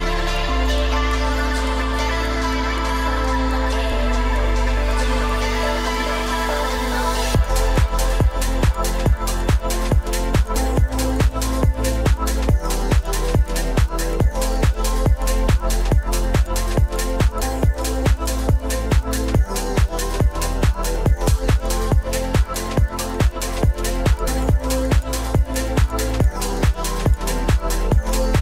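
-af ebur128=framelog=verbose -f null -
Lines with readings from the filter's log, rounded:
Integrated loudness:
  I:         -20.5 LUFS
  Threshold: -30.5 LUFS
Loudness range:
  LRA:         0.6 LU
  Threshold: -40.5 LUFS
  LRA low:   -20.8 LUFS
  LRA high:  -20.2 LUFS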